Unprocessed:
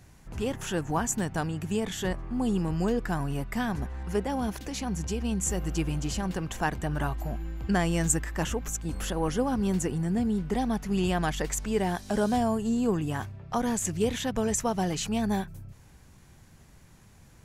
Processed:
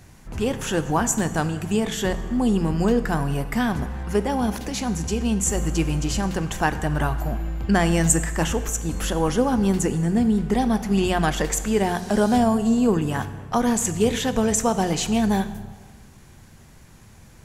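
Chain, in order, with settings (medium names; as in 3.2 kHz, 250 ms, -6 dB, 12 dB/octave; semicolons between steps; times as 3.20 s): hum notches 60/120/180 Hz; plate-style reverb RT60 1.5 s, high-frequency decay 0.85×, DRR 11 dB; trim +6.5 dB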